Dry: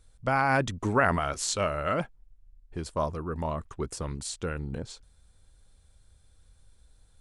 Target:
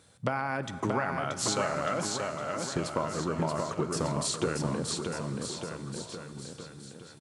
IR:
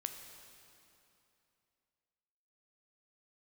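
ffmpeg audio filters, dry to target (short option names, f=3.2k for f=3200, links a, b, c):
-filter_complex "[0:a]highpass=f=120:w=0.5412,highpass=f=120:w=1.3066,highshelf=f=6.3k:g=-5.5,acompressor=threshold=-38dB:ratio=10,aecho=1:1:630|1197|1707|2167|2580:0.631|0.398|0.251|0.158|0.1,asplit=2[a][b];[1:a]atrim=start_sample=2205,asetrate=31752,aresample=44100[c];[b][c]afir=irnorm=-1:irlink=0,volume=-2.5dB[d];[a][d]amix=inputs=2:normalize=0,volume=6dB"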